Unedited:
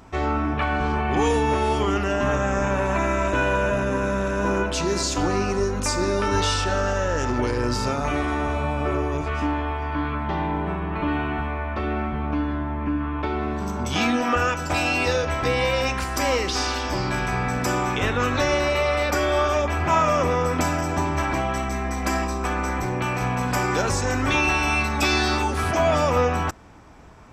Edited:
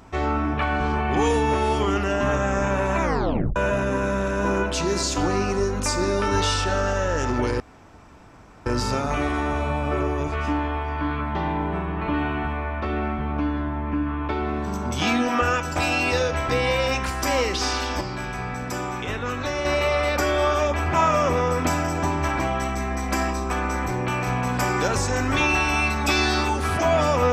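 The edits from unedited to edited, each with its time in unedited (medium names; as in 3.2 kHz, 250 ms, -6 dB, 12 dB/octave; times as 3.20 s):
3.01 s: tape stop 0.55 s
7.60 s: insert room tone 1.06 s
16.95–18.59 s: gain -5.5 dB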